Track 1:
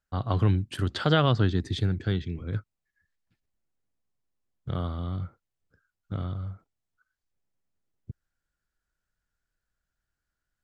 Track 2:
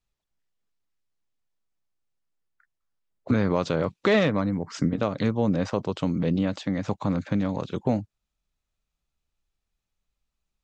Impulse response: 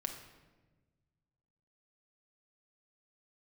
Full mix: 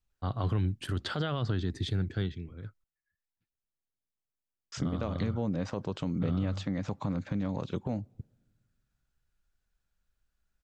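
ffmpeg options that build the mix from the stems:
-filter_complex "[0:a]adelay=100,volume=2.11,afade=t=out:st=2.11:d=0.53:silence=0.334965,afade=t=in:st=4.61:d=0.73:silence=0.334965[s0];[1:a]lowshelf=f=140:g=7.5,acompressor=threshold=0.0708:ratio=6,volume=0.596,asplit=3[s1][s2][s3];[s1]atrim=end=2.84,asetpts=PTS-STARTPTS,afade=t=out:st=2.836:d=0.004:c=hsin[s4];[s2]atrim=start=2.84:end=4.72,asetpts=PTS-STARTPTS,volume=0[s5];[s3]atrim=start=4.72,asetpts=PTS-STARTPTS,afade=t=in:d=0.004:c=hsin[s6];[s4][s5][s6]concat=n=3:v=0:a=1,asplit=2[s7][s8];[s8]volume=0.0631[s9];[2:a]atrim=start_sample=2205[s10];[s9][s10]afir=irnorm=-1:irlink=0[s11];[s0][s7][s11]amix=inputs=3:normalize=0,alimiter=limit=0.0891:level=0:latency=1:release=38"

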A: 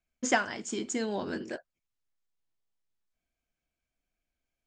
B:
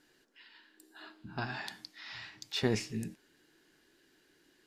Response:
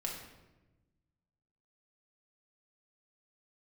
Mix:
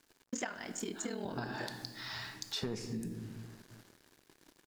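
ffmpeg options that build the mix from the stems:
-filter_complex "[0:a]aeval=exprs='val(0)*sin(2*PI*20*n/s)':c=same,adelay=100,volume=0.501,asplit=2[s0][s1];[s1]volume=0.266[s2];[1:a]equalizer=f=2500:t=o:w=0.9:g=-9.5,asoftclip=type=hard:threshold=0.0794,volume=0.708,asplit=2[s3][s4];[s4]volume=0.596[s5];[2:a]atrim=start_sample=2205[s6];[s2][s5]amix=inputs=2:normalize=0[s7];[s7][s6]afir=irnorm=-1:irlink=0[s8];[s0][s3][s8]amix=inputs=3:normalize=0,acontrast=80,acrusher=bits=8:mix=0:aa=0.5,acompressor=threshold=0.0158:ratio=6"

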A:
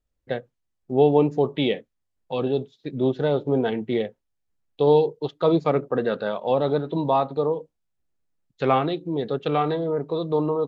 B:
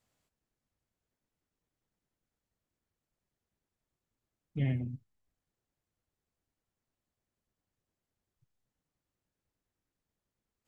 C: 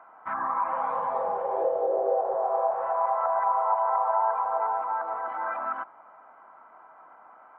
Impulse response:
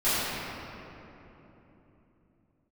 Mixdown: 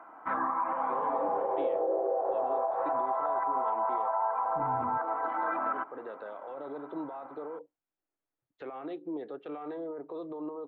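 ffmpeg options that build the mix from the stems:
-filter_complex "[0:a]acompressor=threshold=0.0355:ratio=6,acrossover=split=480 2800:gain=0.0794 1 0.126[s0][s1][s2];[s0][s1][s2]amix=inputs=3:normalize=0,volume=0.944[s3];[1:a]afwtdn=0.00501,flanger=delay=19.5:depth=5.9:speed=0.79,volume=0.944,asplit=2[s4][s5];[2:a]volume=1.06[s6];[s5]apad=whole_len=470678[s7];[s3][s7]sidechaincompress=threshold=0.00501:ratio=8:attack=16:release=1300[s8];[s8][s4]amix=inputs=2:normalize=0,highshelf=f=2800:g=-9,alimiter=level_in=3.76:limit=0.0631:level=0:latency=1:release=28,volume=0.266,volume=1[s9];[s6][s9]amix=inputs=2:normalize=0,equalizer=f=300:w=2.6:g=13,alimiter=limit=0.0841:level=0:latency=1:release=206"

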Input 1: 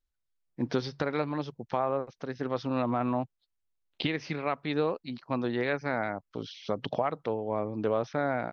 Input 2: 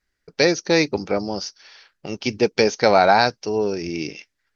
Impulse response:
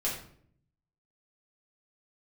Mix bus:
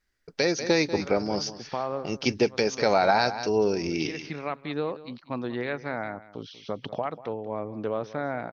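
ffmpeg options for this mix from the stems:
-filter_complex "[0:a]volume=0.841,asplit=2[s0][s1];[s1]volume=0.141[s2];[1:a]volume=0.841,asplit=3[s3][s4][s5];[s4]volume=0.188[s6];[s5]apad=whole_len=375762[s7];[s0][s7]sidechaincompress=threshold=0.0447:ratio=12:attack=5.1:release=428[s8];[s2][s6]amix=inputs=2:normalize=0,aecho=0:1:190:1[s9];[s8][s3][s9]amix=inputs=3:normalize=0,alimiter=limit=0.316:level=0:latency=1:release=266"

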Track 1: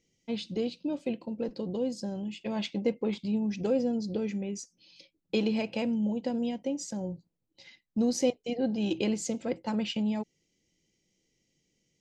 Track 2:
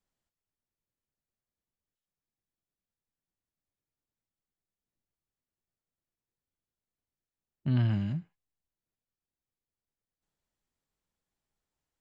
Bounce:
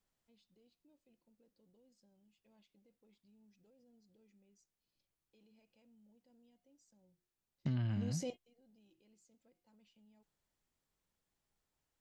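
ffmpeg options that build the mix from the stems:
-filter_complex "[0:a]highshelf=f=6500:g=10.5,bandreject=f=358.2:t=h:w=4,bandreject=f=716.4:t=h:w=4,bandreject=f=1074.6:t=h:w=4,bandreject=f=1432.8:t=h:w=4,bandreject=f=1791:t=h:w=4,bandreject=f=2149.2:t=h:w=4,bandreject=f=2507.4:t=h:w=4,bandreject=f=2865.6:t=h:w=4,bandreject=f=3223.8:t=h:w=4,bandreject=f=3582:t=h:w=4,alimiter=level_in=1.26:limit=0.0631:level=0:latency=1:release=51,volume=0.794,volume=0.631[s0];[1:a]volume=1.12,asplit=2[s1][s2];[s2]apad=whole_len=529349[s3];[s0][s3]sidechaingate=range=0.0224:threshold=0.00224:ratio=16:detection=peak[s4];[s4][s1]amix=inputs=2:normalize=0,acompressor=threshold=0.0178:ratio=4"

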